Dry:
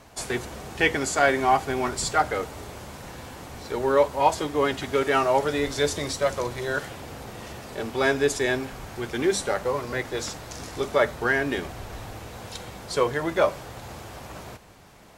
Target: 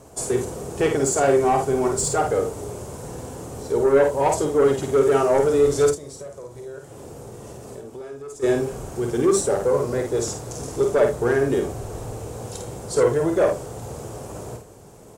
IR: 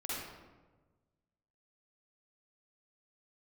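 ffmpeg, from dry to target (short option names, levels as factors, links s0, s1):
-filter_complex "[0:a]equalizer=f=125:t=o:w=1:g=7,equalizer=f=2000:t=o:w=1:g=-8,equalizer=f=4000:t=o:w=1:g=-7,equalizer=f=8000:t=o:w=1:g=9,asoftclip=type=tanh:threshold=0.282,equalizer=f=430:t=o:w=0.85:g=10,aeval=exprs='0.562*sin(PI/2*1.58*val(0)/0.562)':c=same,asplit=3[s0][s1][s2];[s0]afade=t=out:st=5.89:d=0.02[s3];[s1]acompressor=threshold=0.0398:ratio=10,afade=t=in:st=5.89:d=0.02,afade=t=out:st=8.42:d=0.02[s4];[s2]afade=t=in:st=8.42:d=0.02[s5];[s3][s4][s5]amix=inputs=3:normalize=0,aecho=1:1:51|79:0.562|0.168,volume=0.398"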